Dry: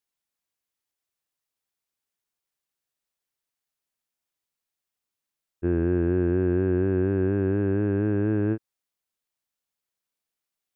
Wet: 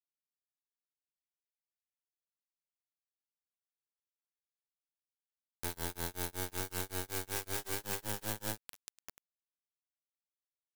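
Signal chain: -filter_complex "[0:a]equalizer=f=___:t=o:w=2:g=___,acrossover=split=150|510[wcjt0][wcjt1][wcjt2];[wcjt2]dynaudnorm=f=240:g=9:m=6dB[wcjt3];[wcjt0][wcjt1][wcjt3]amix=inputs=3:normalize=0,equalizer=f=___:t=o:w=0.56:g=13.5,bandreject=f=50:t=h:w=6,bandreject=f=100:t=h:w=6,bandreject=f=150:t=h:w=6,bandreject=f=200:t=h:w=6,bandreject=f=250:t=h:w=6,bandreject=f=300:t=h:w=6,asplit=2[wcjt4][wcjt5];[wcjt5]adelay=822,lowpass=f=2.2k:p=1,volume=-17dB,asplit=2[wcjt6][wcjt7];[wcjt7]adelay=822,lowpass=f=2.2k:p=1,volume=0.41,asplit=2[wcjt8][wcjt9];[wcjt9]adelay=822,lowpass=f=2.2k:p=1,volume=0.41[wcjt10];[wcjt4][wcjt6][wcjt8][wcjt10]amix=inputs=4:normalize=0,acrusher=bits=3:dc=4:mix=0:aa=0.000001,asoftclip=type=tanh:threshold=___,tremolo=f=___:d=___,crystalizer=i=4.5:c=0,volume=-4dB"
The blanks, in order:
280, -8, 890, -26.5dB, 5.3, 0.99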